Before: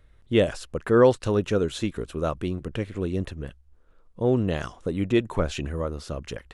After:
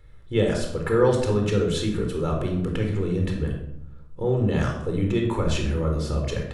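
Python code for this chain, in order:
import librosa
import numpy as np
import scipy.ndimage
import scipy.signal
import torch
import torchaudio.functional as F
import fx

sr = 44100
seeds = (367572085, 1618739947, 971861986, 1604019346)

p1 = fx.notch(x, sr, hz=2800.0, q=20.0)
p2 = fx.over_compress(p1, sr, threshold_db=-31.0, ratio=-1.0)
p3 = p1 + (p2 * librosa.db_to_amplitude(-2.0))
p4 = fx.room_shoebox(p3, sr, seeds[0], volume_m3=2000.0, walls='furnished', distance_m=4.2)
y = p4 * librosa.db_to_amplitude(-7.0)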